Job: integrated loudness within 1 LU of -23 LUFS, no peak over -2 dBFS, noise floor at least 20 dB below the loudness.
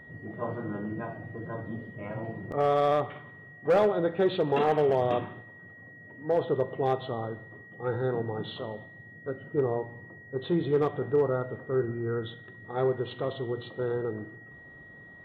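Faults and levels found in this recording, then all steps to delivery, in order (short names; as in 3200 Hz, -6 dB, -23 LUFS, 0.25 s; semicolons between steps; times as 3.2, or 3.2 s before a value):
clipped 0.3%; flat tops at -17.0 dBFS; steady tone 1900 Hz; tone level -48 dBFS; loudness -29.5 LUFS; peak -17.0 dBFS; loudness target -23.0 LUFS
-> clip repair -17 dBFS; notch 1900 Hz, Q 30; gain +6.5 dB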